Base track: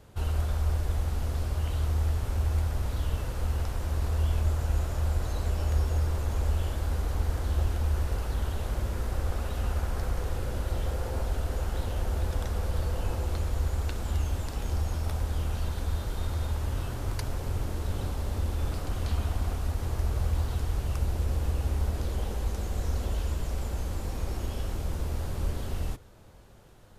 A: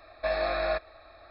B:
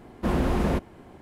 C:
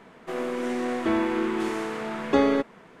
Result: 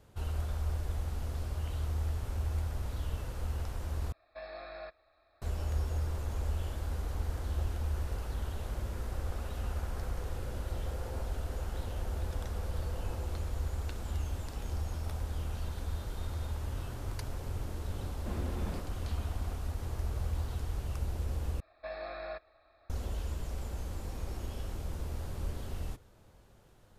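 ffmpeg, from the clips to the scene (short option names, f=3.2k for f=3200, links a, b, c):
-filter_complex "[1:a]asplit=2[a][b];[0:a]volume=-6.5dB[c];[b]highshelf=f=4.6k:g=-5.5[d];[c]asplit=3[e][f][g];[e]atrim=end=4.124[h];[a]atrim=end=1.3,asetpts=PTS-STARTPTS,volume=-16.5dB[i];[f]atrim=start=5.416:end=21.604[j];[d]atrim=end=1.3,asetpts=PTS-STARTPTS,volume=-12.5dB[k];[g]atrim=start=22.896[l];[2:a]atrim=end=1.21,asetpts=PTS-STARTPTS,volume=-17dB,afade=t=in:d=0.004:c=hsin,afade=t=out:st=1.206:d=0.004:c=hsin,adelay=18020[m];[h][i]acrossfade=d=0.004:c1=hsin:c2=hsin[n];[n][j]acrossfade=d=0.004:c1=hsin:c2=hsin[o];[o][k]acrossfade=d=0.004:c1=hsin:c2=hsin[p];[p][l]acrossfade=d=0.004:c1=hsin:c2=hsin[q];[q][m]amix=inputs=2:normalize=0"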